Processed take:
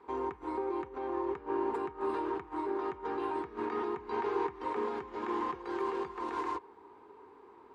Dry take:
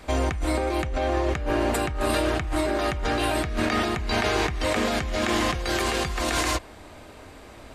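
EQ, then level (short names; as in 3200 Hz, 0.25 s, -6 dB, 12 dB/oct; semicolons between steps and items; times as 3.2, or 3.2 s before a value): double band-pass 620 Hz, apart 1.2 oct; 0.0 dB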